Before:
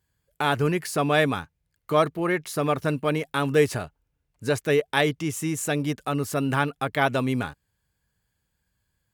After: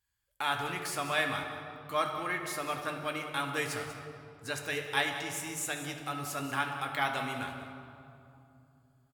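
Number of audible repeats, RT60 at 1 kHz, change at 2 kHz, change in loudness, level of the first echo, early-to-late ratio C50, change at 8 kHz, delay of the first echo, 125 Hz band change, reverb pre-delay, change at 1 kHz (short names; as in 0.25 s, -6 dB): 1, 2.6 s, -5.0 dB, -9.0 dB, -12.5 dB, 4.5 dB, -4.0 dB, 0.19 s, -15.5 dB, 4 ms, -6.0 dB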